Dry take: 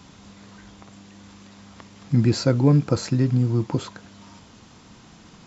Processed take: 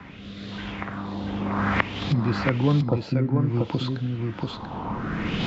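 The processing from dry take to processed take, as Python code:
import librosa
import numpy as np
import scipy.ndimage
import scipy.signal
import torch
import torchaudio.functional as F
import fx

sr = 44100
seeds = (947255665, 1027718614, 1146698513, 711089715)

p1 = fx.recorder_agc(x, sr, target_db=-11.0, rise_db_per_s=15.0, max_gain_db=30)
p2 = fx.filter_lfo_lowpass(p1, sr, shape='sine', hz=0.58, low_hz=870.0, high_hz=3800.0, q=3.2)
p3 = fx.rotary(p2, sr, hz=1.0)
p4 = p3 + fx.echo_single(p3, sr, ms=687, db=-5.5, dry=0)
p5 = fx.band_squash(p4, sr, depth_pct=40)
y = p5 * 10.0 ** (-3.0 / 20.0)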